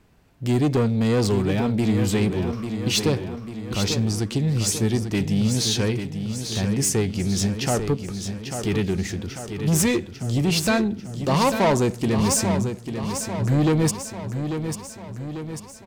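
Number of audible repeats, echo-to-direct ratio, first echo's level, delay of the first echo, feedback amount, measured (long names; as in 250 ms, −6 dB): 6, −6.5 dB, −8.0 dB, 844 ms, 56%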